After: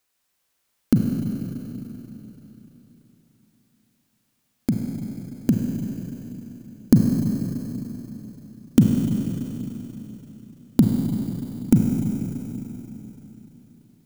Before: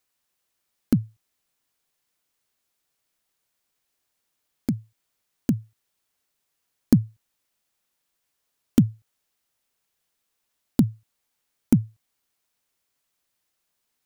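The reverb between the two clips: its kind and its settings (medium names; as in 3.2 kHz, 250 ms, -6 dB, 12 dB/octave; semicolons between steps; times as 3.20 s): Schroeder reverb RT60 3.8 s, combs from 33 ms, DRR 0.5 dB; trim +2.5 dB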